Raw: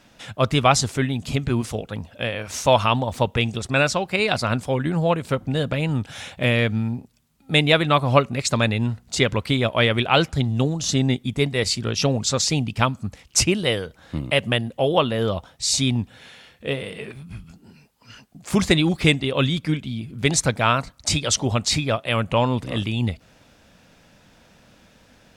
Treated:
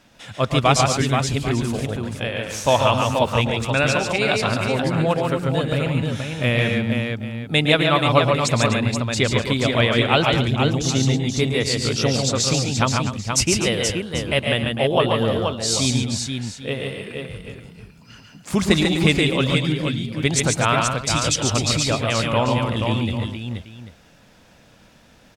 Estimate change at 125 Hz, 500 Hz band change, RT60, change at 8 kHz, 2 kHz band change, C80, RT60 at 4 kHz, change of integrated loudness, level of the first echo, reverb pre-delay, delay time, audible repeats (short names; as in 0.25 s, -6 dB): +2.0 dB, +2.0 dB, none, +2.0 dB, +1.5 dB, none, none, +1.5 dB, -10.5 dB, none, 0.112 s, 5